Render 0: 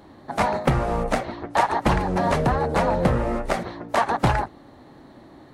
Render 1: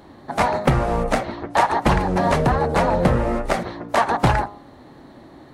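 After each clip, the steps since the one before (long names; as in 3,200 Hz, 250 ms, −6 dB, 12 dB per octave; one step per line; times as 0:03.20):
hum removal 102.3 Hz, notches 14
level +3 dB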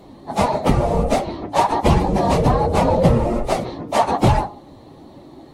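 random phases in long frames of 50 ms
parametric band 1,600 Hz −12 dB 0.76 octaves
level +3 dB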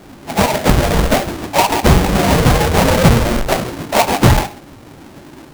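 each half-wave held at its own peak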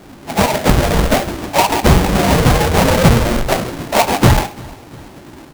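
repeating echo 346 ms, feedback 50%, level −23 dB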